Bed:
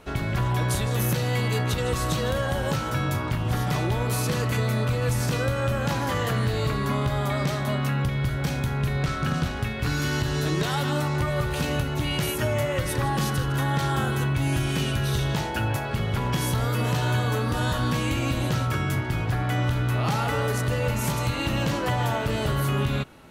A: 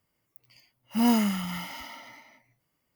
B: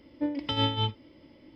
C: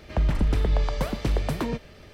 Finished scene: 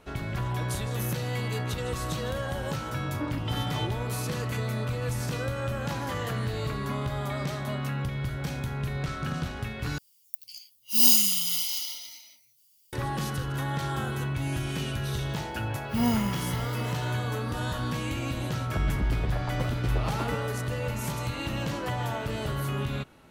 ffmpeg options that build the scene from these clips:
-filter_complex "[1:a]asplit=2[s0][s1];[0:a]volume=0.501[s2];[2:a]alimiter=limit=0.0944:level=0:latency=1:release=71[s3];[s0]aexciter=amount=15.4:drive=7.9:freq=2800[s4];[3:a]asplit=2[s5][s6];[s6]adelay=9.5,afreqshift=0.95[s7];[s5][s7]amix=inputs=2:normalize=1[s8];[s2]asplit=2[s9][s10];[s9]atrim=end=9.984[s11];[s4]atrim=end=2.95,asetpts=PTS-STARTPTS,volume=0.224[s12];[s10]atrim=start=12.926[s13];[s3]atrim=end=1.55,asetpts=PTS-STARTPTS,volume=0.631,afade=t=in:d=0.004:c=hsin,afade=t=out:st=1.546:d=0.004:c=hsin,adelay=2990[s14];[s1]atrim=end=2.95,asetpts=PTS-STARTPTS,volume=0.668,afade=t=in:d=0.004:c=hsin,afade=t=out:st=2.946:d=0.004:c=hsin,adelay=14980[s15];[s8]atrim=end=2.13,asetpts=PTS-STARTPTS,volume=0.668,afade=t=in:d=0.004:c=hsin,afade=t=out:st=2.126:d=0.004:c=hsin,adelay=18590[s16];[s11][s12]acrossfade=d=0.004:c1=hsin:c2=hsin[s17];[s17][s13]acrossfade=d=0.004:c1=hsin:c2=hsin[s18];[s18][s14][s15][s16]amix=inputs=4:normalize=0"

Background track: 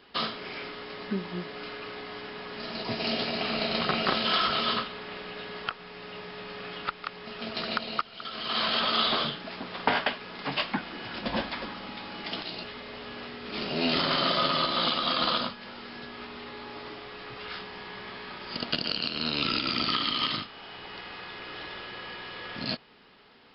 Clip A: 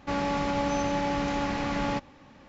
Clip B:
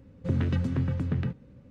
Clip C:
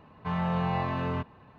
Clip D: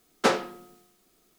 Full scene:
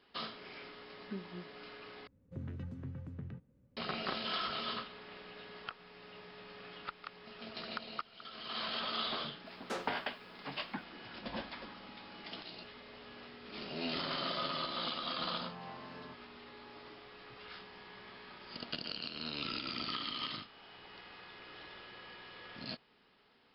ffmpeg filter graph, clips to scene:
-filter_complex "[0:a]volume=0.266[s0];[2:a]highshelf=f=2800:g=-7.5[s1];[4:a]alimiter=limit=0.266:level=0:latency=1:release=18[s2];[3:a]highpass=210[s3];[s0]asplit=2[s4][s5];[s4]atrim=end=2.074[s6];[s1]atrim=end=1.7,asetpts=PTS-STARTPTS,volume=0.15[s7];[s5]atrim=start=3.766[s8];[s2]atrim=end=1.38,asetpts=PTS-STARTPTS,volume=0.15,afade=t=in:d=0.004:c=hsin,afade=t=out:st=1.376:d=0.004:c=hsin,adelay=417186S[s9];[s3]atrim=end=1.58,asetpts=PTS-STARTPTS,volume=0.133,afade=t=in:d=0.004:c=hsin,afade=t=out:st=1.576:d=0.004:c=hsin,adelay=657972S[s10];[s6][s7]acrossfade=d=0.004:c1=hsin:c2=hsin[s11];[s11][s8]acrossfade=d=0.004:c1=hsin:c2=hsin[s12];[s12][s9][s10]amix=inputs=3:normalize=0"

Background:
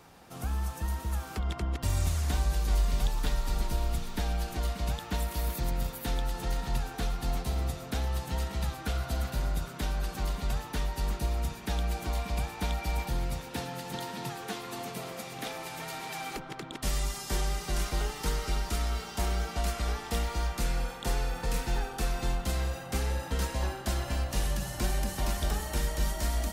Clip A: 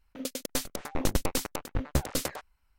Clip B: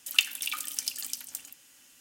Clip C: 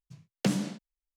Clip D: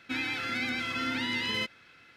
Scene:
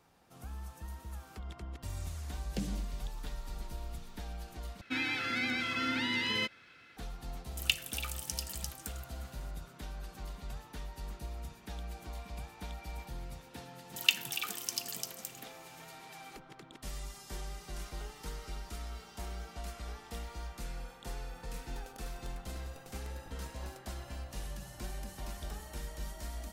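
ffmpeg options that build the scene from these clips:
-filter_complex "[2:a]asplit=2[s0][s1];[0:a]volume=0.251[s2];[3:a]equalizer=f=1200:t=o:w=0.77:g=-13[s3];[s1]equalizer=f=9500:t=o:w=0.42:g=-6[s4];[1:a]acompressor=threshold=0.0126:ratio=6:attack=3.2:release=140:knee=1:detection=peak[s5];[s2]asplit=2[s6][s7];[s6]atrim=end=4.814[s8];[4:a]atrim=end=2.16,asetpts=PTS-STARTPTS,volume=0.841[s9];[s7]atrim=start=6.966[s10];[s3]atrim=end=1.16,asetpts=PTS-STARTPTS,volume=0.316,afade=t=in:d=0.004:c=hsin,afade=t=out:st=1.156:d=0.004:c=hsin,adelay=2120[s11];[s0]atrim=end=2,asetpts=PTS-STARTPTS,volume=0.473,afade=t=in:d=0.004:c=hsin,afade=t=out:st=1.996:d=0.004:c=hsin,adelay=7510[s12];[s4]atrim=end=2,asetpts=PTS-STARTPTS,volume=0.708,afade=t=in:d=0.004:c=hsin,afade=t=out:st=1.996:d=0.004:c=hsin,adelay=13900[s13];[s5]atrim=end=2.78,asetpts=PTS-STARTPTS,volume=0.237,afade=t=in:d=0.004:c=hsin,afade=t=out:st=2.776:d=0.004:c=hsin,adelay=21510[s14];[s8][s9]acrossfade=d=0.004:c1=hsin:c2=hsin[s15];[s15][s10]acrossfade=d=0.004:c1=hsin:c2=hsin[s16];[s16][s11][s12][s13][s14]amix=inputs=5:normalize=0"

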